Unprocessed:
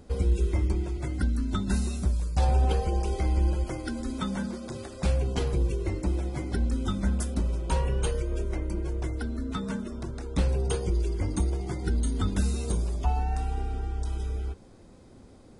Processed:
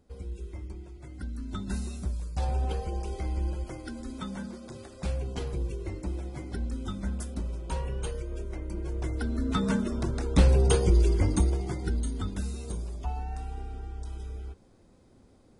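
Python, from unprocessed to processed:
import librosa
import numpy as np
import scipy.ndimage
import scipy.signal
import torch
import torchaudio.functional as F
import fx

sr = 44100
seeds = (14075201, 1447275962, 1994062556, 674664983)

y = fx.gain(x, sr, db=fx.line((1.0, -14.0), (1.62, -6.0), (8.57, -6.0), (9.64, 5.5), (11.11, 5.5), (12.4, -7.0)))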